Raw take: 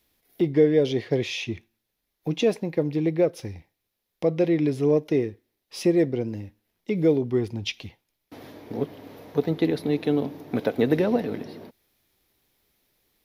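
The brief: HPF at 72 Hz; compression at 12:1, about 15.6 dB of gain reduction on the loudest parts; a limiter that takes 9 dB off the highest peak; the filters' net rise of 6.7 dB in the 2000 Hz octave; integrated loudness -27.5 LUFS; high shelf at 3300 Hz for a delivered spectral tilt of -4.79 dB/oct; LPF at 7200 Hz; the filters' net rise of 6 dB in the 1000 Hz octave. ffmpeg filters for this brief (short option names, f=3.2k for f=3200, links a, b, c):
-af "highpass=72,lowpass=7.2k,equalizer=f=1k:t=o:g=7.5,equalizer=f=2k:t=o:g=5.5,highshelf=f=3.3k:g=3,acompressor=threshold=-29dB:ratio=12,volume=10.5dB,alimiter=limit=-16dB:level=0:latency=1"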